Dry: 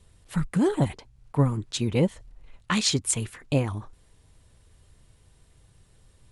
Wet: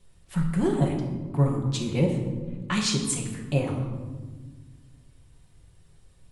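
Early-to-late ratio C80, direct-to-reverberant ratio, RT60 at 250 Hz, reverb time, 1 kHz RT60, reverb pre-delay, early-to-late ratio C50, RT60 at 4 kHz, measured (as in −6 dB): 7.0 dB, −0.5 dB, 2.3 s, 1.4 s, 1.2 s, 5 ms, 5.0 dB, 0.80 s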